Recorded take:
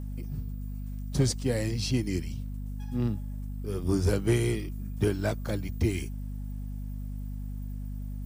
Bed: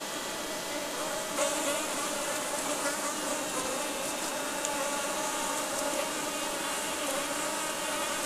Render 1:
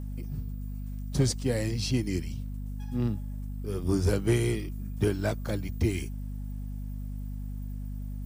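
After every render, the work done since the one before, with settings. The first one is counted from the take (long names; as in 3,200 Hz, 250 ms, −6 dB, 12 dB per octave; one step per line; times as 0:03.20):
no processing that can be heard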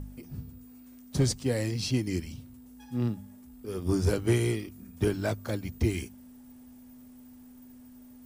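hum removal 50 Hz, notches 4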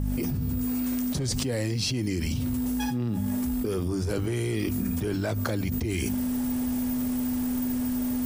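brickwall limiter −23.5 dBFS, peak gain reduction 9 dB
envelope flattener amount 100%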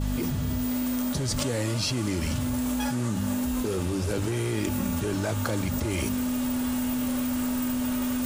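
mix in bed −7 dB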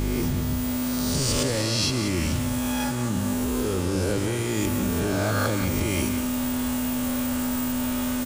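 peak hold with a rise ahead of every peak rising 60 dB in 1.43 s
single-tap delay 183 ms −10 dB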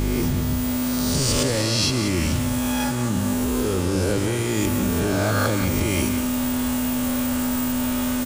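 level +3 dB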